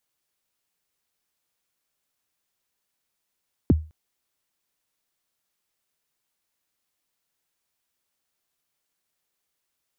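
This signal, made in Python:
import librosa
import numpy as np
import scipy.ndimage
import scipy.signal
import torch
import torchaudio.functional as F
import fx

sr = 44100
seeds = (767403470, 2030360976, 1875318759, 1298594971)

y = fx.drum_kick(sr, seeds[0], length_s=0.21, level_db=-10.0, start_hz=380.0, end_hz=78.0, sweep_ms=25.0, decay_s=0.31, click=False)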